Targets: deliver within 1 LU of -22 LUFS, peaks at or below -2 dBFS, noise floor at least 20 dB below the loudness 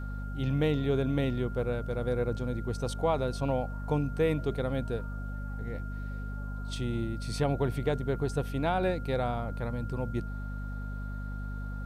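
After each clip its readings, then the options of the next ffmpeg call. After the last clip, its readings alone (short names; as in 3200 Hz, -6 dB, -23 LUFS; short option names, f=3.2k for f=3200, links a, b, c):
hum 50 Hz; harmonics up to 250 Hz; hum level -34 dBFS; steady tone 1400 Hz; tone level -46 dBFS; loudness -32.0 LUFS; peak -15.5 dBFS; loudness target -22.0 LUFS
-> -af "bandreject=f=50:t=h:w=4,bandreject=f=100:t=h:w=4,bandreject=f=150:t=h:w=4,bandreject=f=200:t=h:w=4,bandreject=f=250:t=h:w=4"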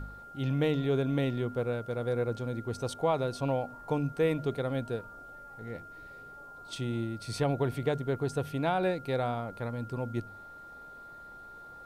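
hum none; steady tone 1400 Hz; tone level -46 dBFS
-> -af "bandreject=f=1.4k:w=30"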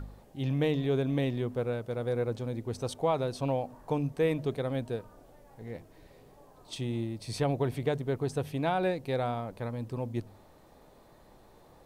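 steady tone none; loudness -32.0 LUFS; peak -16.5 dBFS; loudness target -22.0 LUFS
-> -af "volume=10dB"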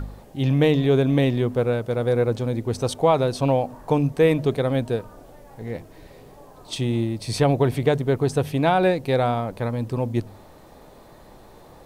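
loudness -22.0 LUFS; peak -6.5 dBFS; noise floor -48 dBFS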